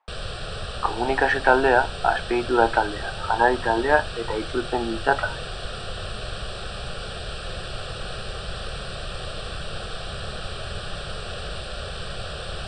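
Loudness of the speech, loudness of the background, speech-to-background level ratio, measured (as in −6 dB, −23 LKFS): −22.5 LKFS, −33.0 LKFS, 10.5 dB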